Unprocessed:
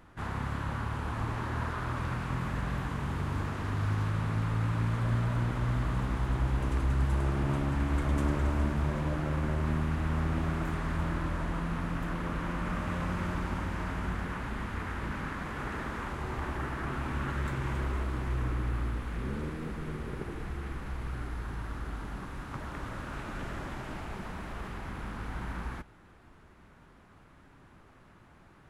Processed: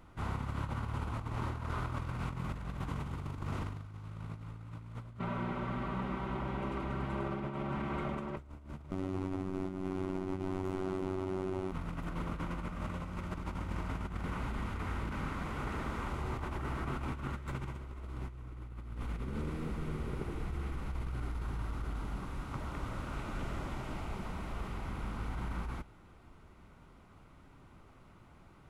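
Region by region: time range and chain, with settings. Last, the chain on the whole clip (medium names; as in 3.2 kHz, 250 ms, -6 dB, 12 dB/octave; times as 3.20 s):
5.19–8.37 s: three-band isolator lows -16 dB, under 160 Hz, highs -16 dB, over 3.4 kHz + comb 5.2 ms, depth 68%
8.91–11.72 s: treble shelf 8.9 kHz -5 dB + frequency shift -410 Hz + robot voice 94.1 Hz
whole clip: bass shelf 110 Hz +4 dB; band-stop 1.7 kHz, Q 5.5; compressor with a negative ratio -33 dBFS, ratio -0.5; trim -4 dB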